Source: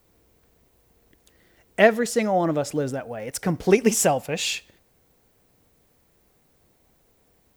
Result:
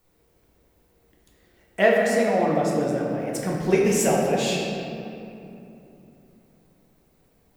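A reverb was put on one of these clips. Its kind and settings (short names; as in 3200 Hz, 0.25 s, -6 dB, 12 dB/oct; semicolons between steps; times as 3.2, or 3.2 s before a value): shoebox room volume 120 m³, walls hard, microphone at 0.6 m; gain -5.5 dB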